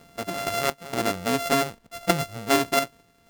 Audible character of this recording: a buzz of ramps at a fixed pitch in blocks of 64 samples; random-step tremolo 4.3 Hz, depth 80%; a quantiser's noise floor 12-bit, dither none

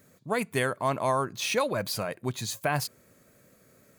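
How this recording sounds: noise floor -61 dBFS; spectral tilt -4.0 dB/oct

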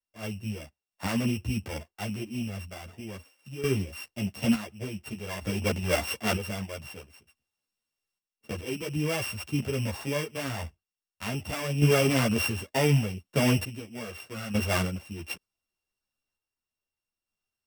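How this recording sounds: a buzz of ramps at a fixed pitch in blocks of 16 samples; random-step tremolo 1.1 Hz, depth 85%; a shimmering, thickened sound

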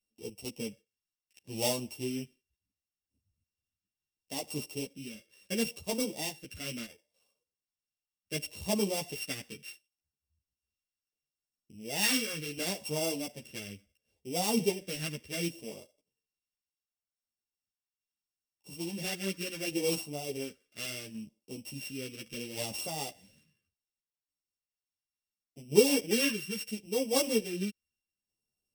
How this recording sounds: a buzz of ramps at a fixed pitch in blocks of 16 samples; phasing stages 2, 0.71 Hz, lowest notch 800–1600 Hz; random-step tremolo; a shimmering, thickened sound

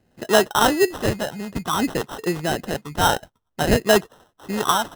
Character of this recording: phasing stages 8, 0.55 Hz, lowest notch 360–2200 Hz; aliases and images of a low sample rate 2300 Hz, jitter 0%

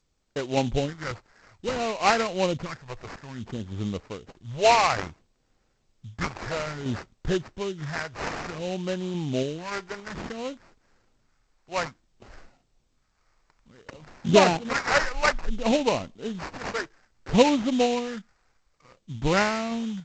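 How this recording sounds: phasing stages 2, 0.58 Hz, lowest notch 210–4900 Hz; aliases and images of a low sample rate 3400 Hz, jitter 20%; random-step tremolo; G.722

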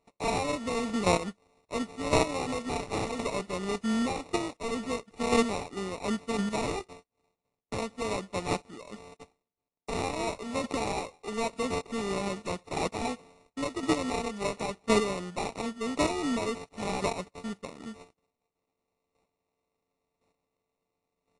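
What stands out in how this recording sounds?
a buzz of ramps at a fixed pitch in blocks of 16 samples; chopped level 0.94 Hz, depth 65%, duty 10%; aliases and images of a low sample rate 1600 Hz, jitter 0%; AAC

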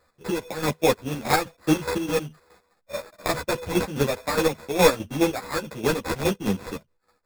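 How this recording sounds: a buzz of ramps at a fixed pitch in blocks of 8 samples; chopped level 4.8 Hz, depth 65%, duty 45%; aliases and images of a low sample rate 3000 Hz, jitter 0%; a shimmering, thickened sound

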